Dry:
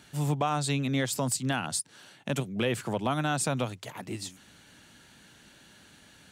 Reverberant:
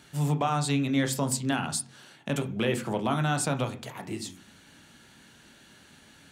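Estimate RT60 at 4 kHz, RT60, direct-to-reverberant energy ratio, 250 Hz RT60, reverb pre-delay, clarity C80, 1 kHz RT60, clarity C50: 0.45 s, 0.45 s, 6.0 dB, 0.65 s, 15 ms, 19.5 dB, 0.40 s, 14.5 dB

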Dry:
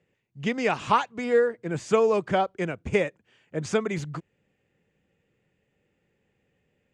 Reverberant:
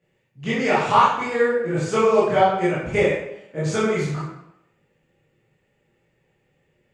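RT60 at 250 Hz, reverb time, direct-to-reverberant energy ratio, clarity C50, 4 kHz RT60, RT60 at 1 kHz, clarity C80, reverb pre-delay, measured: 0.80 s, 0.80 s, -10.0 dB, 0.0 dB, 0.65 s, 0.80 s, 4.0 dB, 17 ms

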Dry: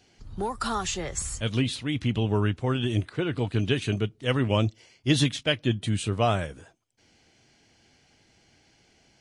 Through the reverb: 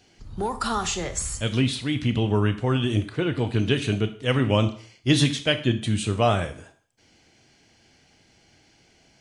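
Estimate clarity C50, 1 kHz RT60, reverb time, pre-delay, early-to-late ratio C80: 13.0 dB, 0.45 s, 0.45 s, 23 ms, 17.0 dB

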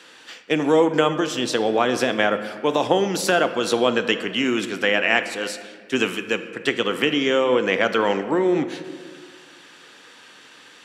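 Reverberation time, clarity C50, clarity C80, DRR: 1.8 s, 11.0 dB, 12.5 dB, 9.5 dB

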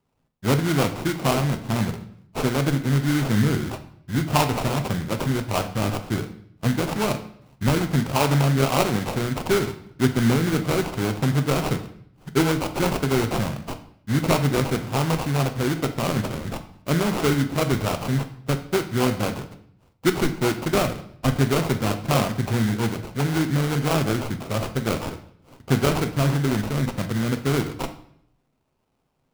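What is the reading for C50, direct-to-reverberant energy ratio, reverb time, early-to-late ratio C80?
12.0 dB, 7.0 dB, 0.65 s, 15.0 dB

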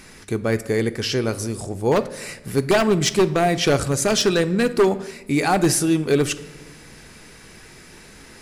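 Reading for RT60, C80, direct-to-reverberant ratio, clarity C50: 1.1 s, 18.5 dB, 11.0 dB, 16.0 dB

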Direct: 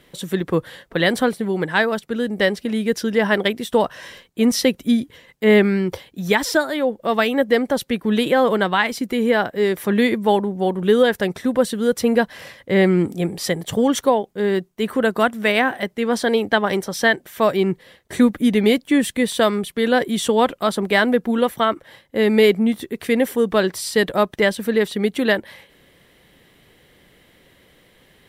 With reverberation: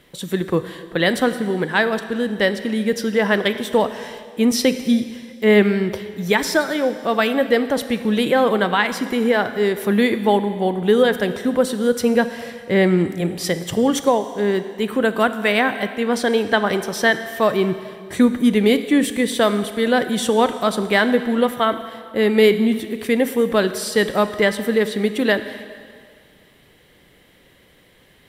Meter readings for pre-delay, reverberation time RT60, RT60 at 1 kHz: 24 ms, 2.1 s, 2.1 s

